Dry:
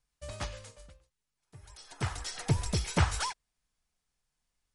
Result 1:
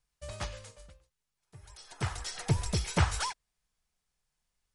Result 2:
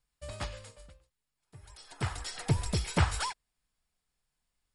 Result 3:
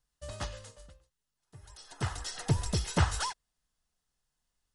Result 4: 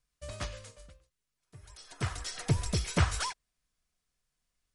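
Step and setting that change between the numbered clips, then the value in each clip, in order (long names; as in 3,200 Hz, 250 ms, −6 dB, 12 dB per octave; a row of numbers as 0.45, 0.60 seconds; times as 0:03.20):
notch filter, centre frequency: 270, 6,100, 2,300, 850 Hertz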